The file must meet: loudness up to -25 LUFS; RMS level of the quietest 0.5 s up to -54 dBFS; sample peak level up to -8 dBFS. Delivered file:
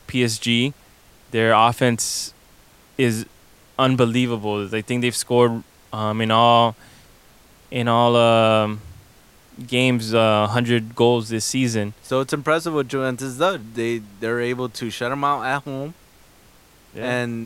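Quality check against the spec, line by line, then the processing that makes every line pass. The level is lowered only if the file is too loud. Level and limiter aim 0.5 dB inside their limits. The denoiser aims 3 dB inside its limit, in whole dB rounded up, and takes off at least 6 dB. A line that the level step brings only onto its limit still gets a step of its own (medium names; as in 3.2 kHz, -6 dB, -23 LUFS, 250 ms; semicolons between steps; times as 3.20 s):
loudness -20.0 LUFS: fail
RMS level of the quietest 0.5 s -51 dBFS: fail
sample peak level -2.0 dBFS: fail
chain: trim -5.5 dB; peak limiter -8.5 dBFS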